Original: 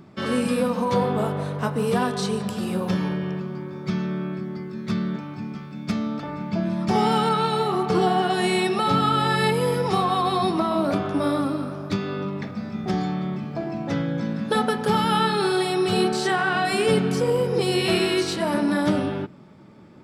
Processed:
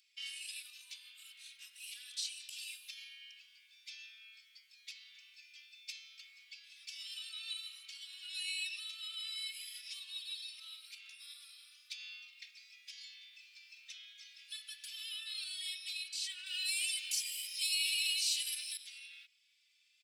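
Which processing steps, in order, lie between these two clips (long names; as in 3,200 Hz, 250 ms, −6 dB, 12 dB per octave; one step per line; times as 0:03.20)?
downward compressor 2 to 1, threshold −24 dBFS, peak gain reduction 5 dB
0:16.46–0:18.77: spectral tilt +4 dB per octave
brickwall limiter −19.5 dBFS, peak gain reduction 9 dB
elliptic high-pass filter 2,500 Hz, stop band 70 dB
barber-pole flanger 3.2 ms +0.63 Hz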